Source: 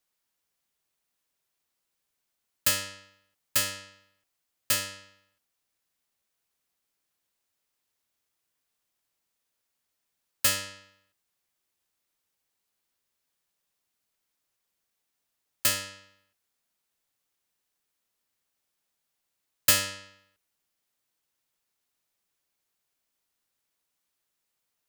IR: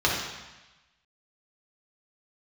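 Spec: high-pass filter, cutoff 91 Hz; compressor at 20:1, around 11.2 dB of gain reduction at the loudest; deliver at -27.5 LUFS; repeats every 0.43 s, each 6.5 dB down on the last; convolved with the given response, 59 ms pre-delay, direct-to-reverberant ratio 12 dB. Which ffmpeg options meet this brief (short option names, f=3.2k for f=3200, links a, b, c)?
-filter_complex "[0:a]highpass=91,acompressor=threshold=-26dB:ratio=20,aecho=1:1:430|860|1290|1720|2150|2580:0.473|0.222|0.105|0.0491|0.0231|0.0109,asplit=2[a][b];[1:a]atrim=start_sample=2205,adelay=59[c];[b][c]afir=irnorm=-1:irlink=0,volume=-27.5dB[d];[a][d]amix=inputs=2:normalize=0,volume=8.5dB"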